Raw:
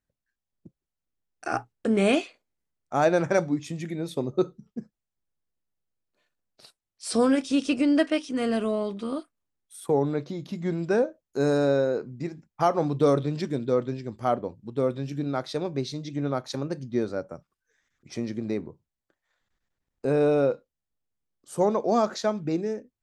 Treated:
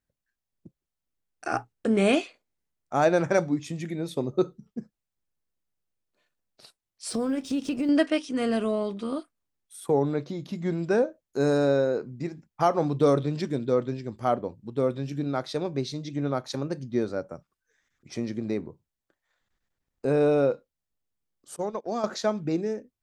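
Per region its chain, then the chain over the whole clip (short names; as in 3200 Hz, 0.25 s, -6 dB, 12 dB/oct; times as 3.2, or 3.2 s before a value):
7.09–7.89 G.711 law mismatch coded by A + compressor 3:1, threshold -32 dBFS + low shelf 470 Hz +7.5 dB
21.56–22.04 bell 3500 Hz +3.5 dB 2.1 oct + compressor 3:1, threshold -27 dBFS + gate -31 dBFS, range -24 dB
whole clip: dry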